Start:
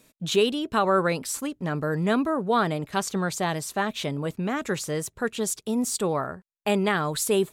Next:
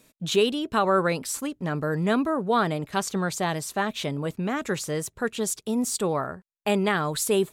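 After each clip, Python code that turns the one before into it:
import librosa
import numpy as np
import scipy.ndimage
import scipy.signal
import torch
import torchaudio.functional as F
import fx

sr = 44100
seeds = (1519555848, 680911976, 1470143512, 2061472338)

y = x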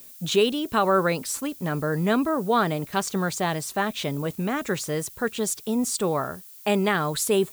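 y = fx.dmg_noise_colour(x, sr, seeds[0], colour='violet', level_db=-47.0)
y = y * 10.0 ** (1.0 / 20.0)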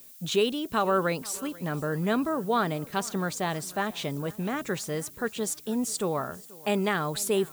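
y = fx.echo_feedback(x, sr, ms=485, feedback_pct=51, wet_db=-22.0)
y = y * 10.0 ** (-4.0 / 20.0)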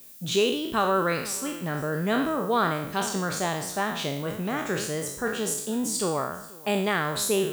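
y = fx.spec_trails(x, sr, decay_s=0.69)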